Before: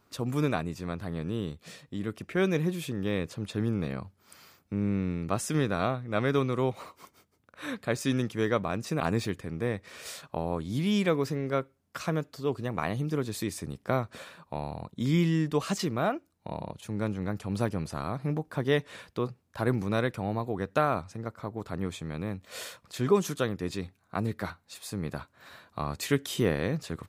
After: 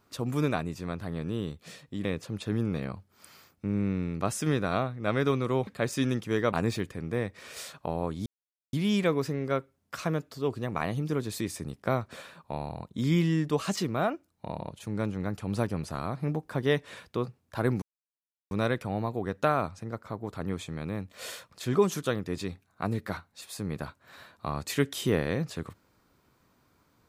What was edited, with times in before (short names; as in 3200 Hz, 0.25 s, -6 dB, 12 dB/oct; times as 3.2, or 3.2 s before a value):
2.05–3.13 cut
6.75–7.75 cut
8.61–9.02 cut
10.75 insert silence 0.47 s
19.84 insert silence 0.69 s